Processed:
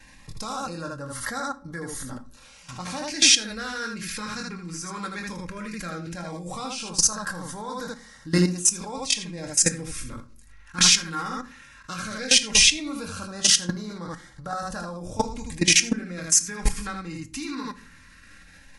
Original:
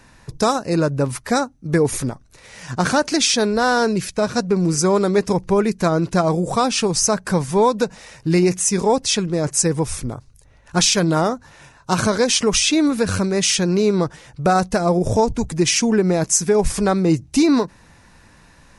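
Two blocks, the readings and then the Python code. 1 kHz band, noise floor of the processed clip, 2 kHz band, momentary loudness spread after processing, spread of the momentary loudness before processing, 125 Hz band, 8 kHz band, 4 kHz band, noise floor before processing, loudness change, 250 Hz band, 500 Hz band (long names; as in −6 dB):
−12.0 dB, −51 dBFS, −3.0 dB, 19 LU, 7 LU, −11.5 dB, −0.5 dB, +0.5 dB, −50 dBFS, −4.5 dB, −12.5 dB, −17.5 dB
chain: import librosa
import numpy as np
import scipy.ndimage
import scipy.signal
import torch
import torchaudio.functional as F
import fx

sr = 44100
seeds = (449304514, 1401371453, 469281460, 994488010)

p1 = fx.filter_lfo_notch(x, sr, shape='sine', hz=0.16, low_hz=610.0, high_hz=2600.0, q=1.6)
p2 = fx.peak_eq(p1, sr, hz=440.0, db=-9.0, octaves=2.6)
p3 = p2 + fx.room_early_taps(p2, sr, ms=(23, 79), db=(-6.5, -5.0), dry=0)
p4 = fx.level_steps(p3, sr, step_db=18)
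p5 = fx.peak_eq(p4, sr, hz=1600.0, db=8.0, octaves=1.7)
p6 = p5 + 0.52 * np.pad(p5, (int(3.7 * sr / 1000.0), 0))[:len(p5)]
y = fx.room_shoebox(p6, sr, seeds[0], volume_m3=440.0, walls='furnished', distance_m=0.48)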